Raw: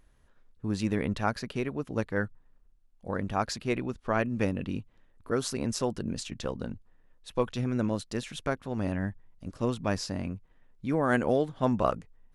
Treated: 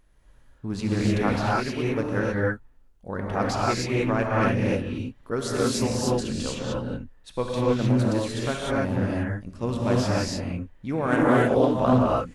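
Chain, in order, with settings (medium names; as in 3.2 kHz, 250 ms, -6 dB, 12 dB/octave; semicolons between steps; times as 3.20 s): gated-style reverb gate 330 ms rising, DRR -5.5 dB; loudspeaker Doppler distortion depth 0.25 ms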